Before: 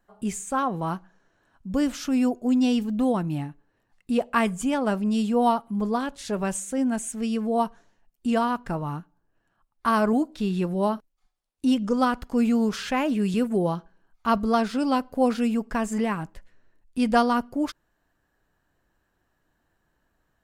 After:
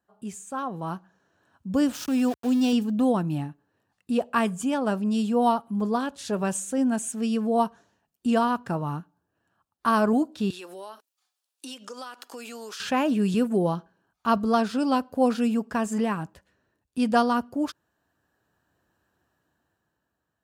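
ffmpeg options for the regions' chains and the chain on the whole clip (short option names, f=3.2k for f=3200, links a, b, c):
-filter_complex "[0:a]asettb=1/sr,asplit=3[a][b][c];[a]atrim=end=1.934[d];[b]atrim=start=1.93:end=2.73,asetpts=PTS-STARTPTS,afade=t=in:d=0.004:c=qsin,afade=t=out:st=0.796:d=0.004:c=qsin,equalizer=f=230:w=0.42:g=-2.5,aeval=exprs='val(0)*gte(abs(val(0)),0.0168)':c=same[e];[c]atrim=start=2.726[f];[d][e]acrossfade=d=0.004:c1=hsin:c2=qsin[g];[g][f]acrossfade=d=0.004:c1=qsin:c2=hsin,asettb=1/sr,asplit=3[h][i][j];[h]atrim=end=10.504[k];[i]atrim=start=10.5:end=12.8,asetpts=PTS-STARTPTS,afade=t=in:d=0.004:c=qsin,afade=t=out:st=2.296:d=0.004:c=qsin,highpass=f=320:w=0.5412,highpass=f=320:w=1.3066,tiltshelf=f=1.2k:g=-7.5,acompressor=threshold=-37dB:ratio=6:attack=3.2:release=140:knee=1:detection=peak[l];[j]atrim=start=12.796[m];[k][l]acrossfade=d=0.004:c1=hsin:c2=qsin[n];[n][m]acrossfade=d=0.004:c1=qsin:c2=hsin,highpass=f=68:w=0.5412,highpass=f=68:w=1.3066,equalizer=f=2.1k:t=o:w=0.21:g=-8,dynaudnorm=f=190:g=11:m=9dB,volume=-7.5dB"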